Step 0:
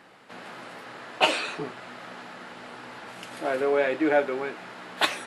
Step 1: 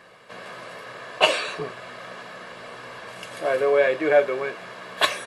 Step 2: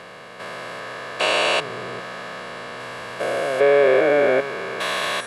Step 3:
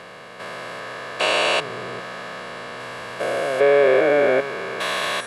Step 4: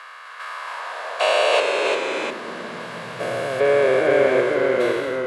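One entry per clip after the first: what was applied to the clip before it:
comb 1.8 ms, depth 59%; gain +2 dB
stepped spectrum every 0.4 s; gain +7.5 dB
nothing audible
ending faded out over 0.84 s; echoes that change speed 0.254 s, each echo -1 st, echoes 2; high-pass sweep 1200 Hz -> 77 Hz, 0.44–3.91; gain -2.5 dB

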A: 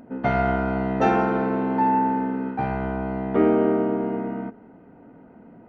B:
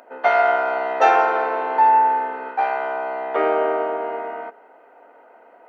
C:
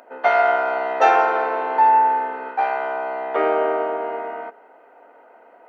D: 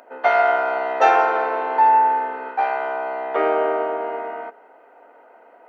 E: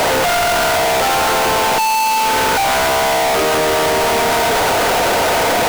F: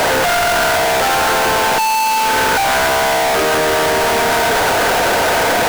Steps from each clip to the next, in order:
HPF 540 Hz 24 dB/oct; gain +7.5 dB
nothing audible
HPF 170 Hz
infinite clipping; gain +6 dB
bell 1600 Hz +5.5 dB 0.25 oct

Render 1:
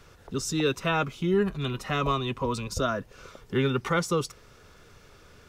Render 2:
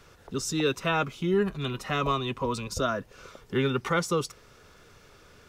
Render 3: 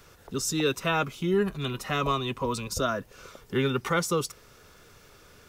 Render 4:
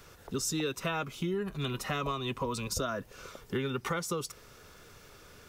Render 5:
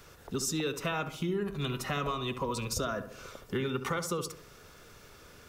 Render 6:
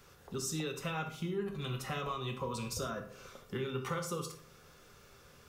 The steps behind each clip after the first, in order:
low shelf 140 Hz -4 dB
high shelf 10000 Hz +11.5 dB
compressor 10:1, threshold -29 dBFS, peak gain reduction 10 dB
darkening echo 69 ms, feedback 49%, low-pass 1700 Hz, level -9.5 dB
non-linear reverb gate 0.14 s falling, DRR 4 dB; gain -6.5 dB

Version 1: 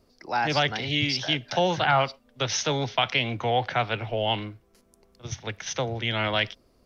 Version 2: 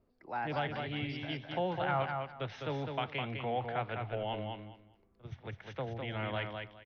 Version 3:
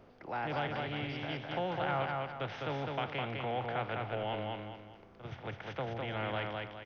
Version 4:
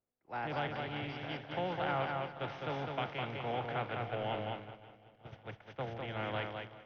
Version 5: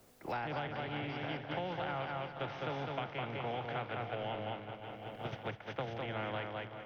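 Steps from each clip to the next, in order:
air absorption 460 m; on a send: feedback echo 0.205 s, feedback 21%, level -5 dB; on the sum: gain -9 dB
per-bin compression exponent 0.6; gain -3.5 dB
swung echo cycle 0.929 s, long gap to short 1.5:1, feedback 39%, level -10.5 dB; expander -34 dBFS; gain -1 dB
three-band squash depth 100%; gain -2 dB

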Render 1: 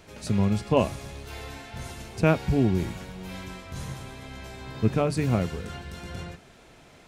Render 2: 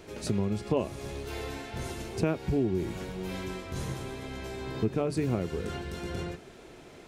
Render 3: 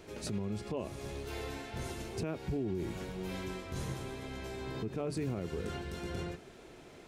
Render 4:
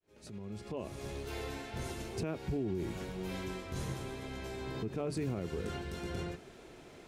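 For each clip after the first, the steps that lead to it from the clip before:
bell 370 Hz +9 dB 0.79 oct; compressor 3:1, threshold -27 dBFS, peak gain reduction 11.5 dB
limiter -23.5 dBFS, peak gain reduction 8.5 dB; gain -3.5 dB
opening faded in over 1.04 s

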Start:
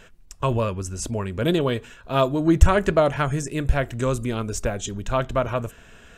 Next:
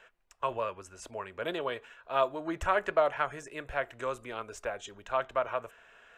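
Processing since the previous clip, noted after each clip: three-band isolator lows -22 dB, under 490 Hz, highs -13 dB, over 2900 Hz; gain -4.5 dB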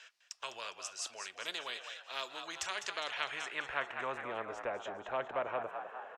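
band-pass sweep 5100 Hz -> 600 Hz, 2.87–4.28; frequency-shifting echo 0.204 s, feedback 44%, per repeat +63 Hz, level -12 dB; spectral compressor 2:1; gain +3.5 dB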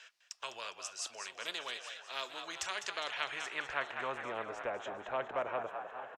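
echo 0.836 s -15 dB

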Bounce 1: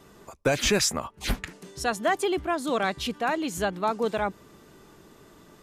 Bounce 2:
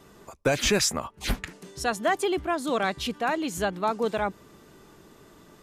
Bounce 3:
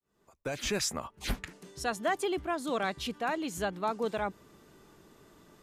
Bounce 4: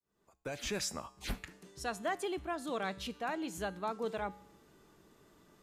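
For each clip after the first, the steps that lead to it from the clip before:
nothing audible
opening faded in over 1.07 s; gain -5.5 dB
resonator 64 Hz, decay 0.71 s, harmonics odd, mix 50%

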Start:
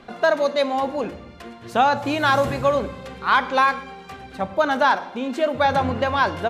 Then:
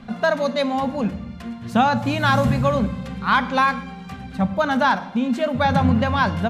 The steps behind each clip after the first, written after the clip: resonant low shelf 270 Hz +7.5 dB, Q 3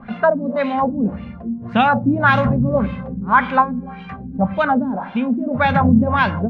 LFO low-pass sine 1.8 Hz 260–2900 Hz; gain +1 dB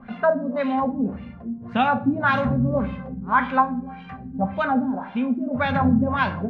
reverb RT60 0.45 s, pre-delay 4 ms, DRR 8.5 dB; gain -6 dB

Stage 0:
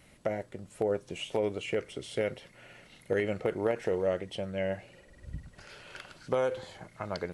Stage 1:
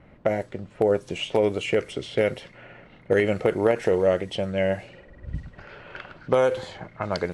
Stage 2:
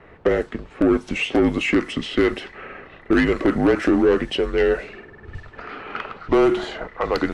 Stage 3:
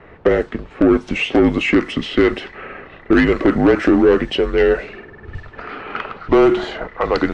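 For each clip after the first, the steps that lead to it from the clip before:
low-pass opened by the level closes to 1300 Hz, open at -30 dBFS; gain +8.5 dB
overdrive pedal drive 18 dB, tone 2400 Hz, clips at -7 dBFS; frequency shift -150 Hz
air absorption 66 m; gain +4.5 dB

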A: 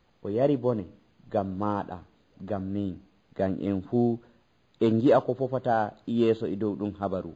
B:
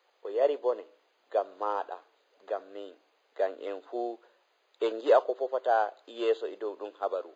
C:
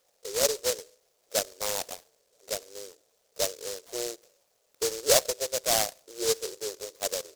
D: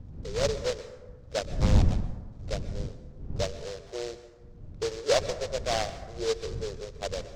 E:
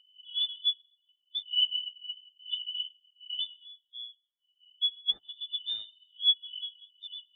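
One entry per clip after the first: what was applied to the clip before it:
steep high-pass 420 Hz 36 dB/oct
formant sharpening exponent 2; noise-modulated delay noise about 5700 Hz, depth 0.24 ms
wind noise 100 Hz -32 dBFS; air absorption 150 m; plate-style reverb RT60 1.3 s, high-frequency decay 0.4×, pre-delay 0.11 s, DRR 12.5 dB
four-band scrambler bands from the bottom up 2413; treble ducked by the level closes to 1400 Hz, closed at -19 dBFS; spectral expander 2.5:1

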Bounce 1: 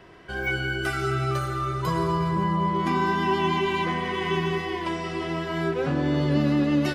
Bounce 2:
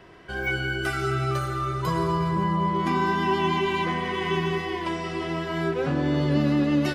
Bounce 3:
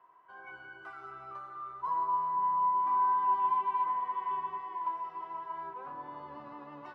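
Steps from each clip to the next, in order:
nothing audible
octaver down 1 oct, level -4 dB; band-pass 1000 Hz, Q 10

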